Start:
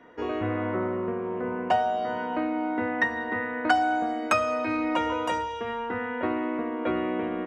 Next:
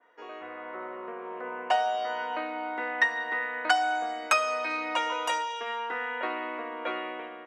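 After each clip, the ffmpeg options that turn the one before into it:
ffmpeg -i in.wav -af "highpass=650,dynaudnorm=framelen=630:gausssize=3:maxgain=8dB,adynamicequalizer=threshold=0.02:dfrequency=2400:dqfactor=0.7:tfrequency=2400:tqfactor=0.7:attack=5:release=100:ratio=0.375:range=3.5:mode=boostabove:tftype=highshelf,volume=-7.5dB" out.wav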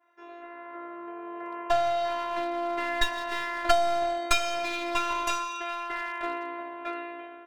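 ffmpeg -i in.wav -af "dynaudnorm=framelen=280:gausssize=13:maxgain=10.5dB,aeval=exprs='clip(val(0),-1,0.0596)':channel_layout=same,afftfilt=real='hypot(re,im)*cos(PI*b)':imag='0':win_size=512:overlap=0.75" out.wav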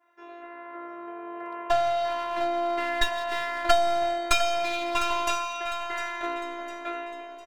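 ffmpeg -i in.wav -af "aecho=1:1:704|1408|2112|2816:0.266|0.109|0.0447|0.0183,volume=1dB" out.wav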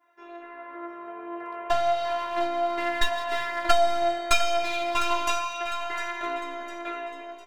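ffmpeg -i in.wav -af "flanger=delay=6.6:depth=9.6:regen=48:speed=0.31:shape=triangular,volume=4.5dB" out.wav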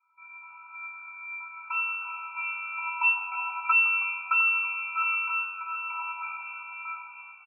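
ffmpeg -i in.wav -filter_complex "[0:a]asplit=5[link_01][link_02][link_03][link_04][link_05];[link_02]adelay=158,afreqshift=91,volume=-21.5dB[link_06];[link_03]adelay=316,afreqshift=182,volume=-26.5dB[link_07];[link_04]adelay=474,afreqshift=273,volume=-31.6dB[link_08];[link_05]adelay=632,afreqshift=364,volume=-36.6dB[link_09];[link_01][link_06][link_07][link_08][link_09]amix=inputs=5:normalize=0,lowpass=frequency=2300:width_type=q:width=0.5098,lowpass=frequency=2300:width_type=q:width=0.6013,lowpass=frequency=2300:width_type=q:width=0.9,lowpass=frequency=2300:width_type=q:width=2.563,afreqshift=-2700,afftfilt=real='re*eq(mod(floor(b*sr/1024/760),2),1)':imag='im*eq(mod(floor(b*sr/1024/760),2),1)':win_size=1024:overlap=0.75" out.wav

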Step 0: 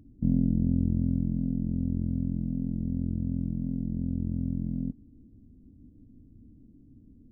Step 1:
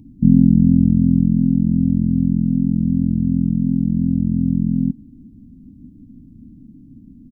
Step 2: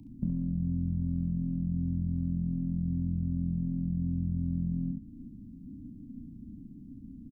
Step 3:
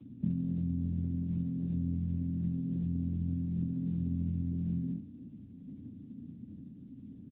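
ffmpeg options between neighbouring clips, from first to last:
ffmpeg -i in.wav -af "firequalizer=gain_entry='entry(100,0);entry(160,9);entry(260,7);entry(420,-8);entry(590,-10);entry(900,4);entry(1500,-27);entry(2300,2)':delay=0.05:min_phase=1,volume=6.5dB" out.wav
ffmpeg -i in.wav -filter_complex "[0:a]alimiter=limit=-11.5dB:level=0:latency=1:release=57,acrossover=split=190|410[link_01][link_02][link_03];[link_01]acompressor=threshold=-25dB:ratio=4[link_04];[link_02]acompressor=threshold=-34dB:ratio=4[link_05];[link_03]acompressor=threshold=-50dB:ratio=4[link_06];[link_04][link_05][link_06]amix=inputs=3:normalize=0,aecho=1:1:34|68:0.398|0.562,volume=-5.5dB" out.wav
ffmpeg -i in.wav -filter_complex "[0:a]acrossover=split=130|190|270[link_01][link_02][link_03][link_04];[link_01]asplit=2[link_05][link_06];[link_06]adelay=33,volume=-3.5dB[link_07];[link_05][link_07]amix=inputs=2:normalize=0[link_08];[link_04]adynamicsmooth=sensitivity=1.5:basefreq=580[link_09];[link_08][link_02][link_03][link_09]amix=inputs=4:normalize=0" -ar 8000 -c:a libopencore_amrnb -b:a 10200 out.amr

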